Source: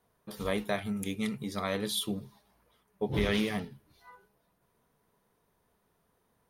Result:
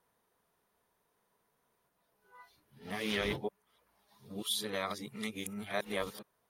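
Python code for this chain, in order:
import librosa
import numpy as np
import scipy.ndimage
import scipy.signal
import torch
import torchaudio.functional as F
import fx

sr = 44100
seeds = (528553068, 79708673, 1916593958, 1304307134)

y = np.flip(x).copy()
y = fx.low_shelf(y, sr, hz=300.0, db=-10.5)
y = F.gain(torch.from_numpy(y), -1.5).numpy()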